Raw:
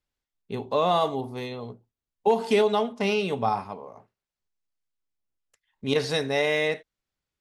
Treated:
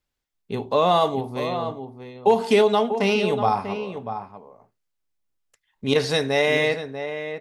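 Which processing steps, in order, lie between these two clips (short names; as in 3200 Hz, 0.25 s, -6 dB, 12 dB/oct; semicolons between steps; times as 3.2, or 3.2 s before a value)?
outdoor echo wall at 110 m, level -9 dB; gain +4 dB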